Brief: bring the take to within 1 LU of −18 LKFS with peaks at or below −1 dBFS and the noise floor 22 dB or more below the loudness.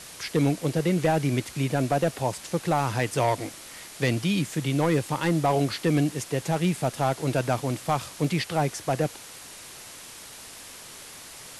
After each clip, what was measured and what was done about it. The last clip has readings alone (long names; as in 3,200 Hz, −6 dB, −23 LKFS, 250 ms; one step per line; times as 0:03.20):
share of clipped samples 0.8%; peaks flattened at −15.5 dBFS; background noise floor −44 dBFS; target noise floor −48 dBFS; integrated loudness −26.0 LKFS; sample peak −15.5 dBFS; target loudness −18.0 LKFS
→ clipped peaks rebuilt −15.5 dBFS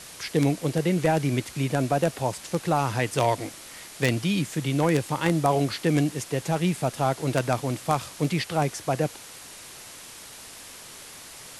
share of clipped samples 0.0%; background noise floor −44 dBFS; target noise floor −48 dBFS
→ broadband denoise 6 dB, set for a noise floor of −44 dBFS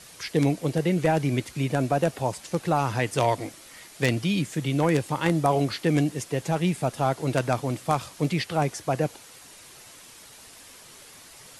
background noise floor −48 dBFS; integrated loudness −26.0 LKFS; sample peak −6.5 dBFS; target loudness −18.0 LKFS
→ level +8 dB
brickwall limiter −1 dBFS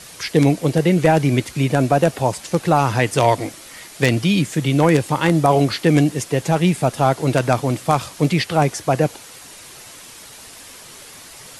integrated loudness −18.0 LKFS; sample peak −1.0 dBFS; background noise floor −40 dBFS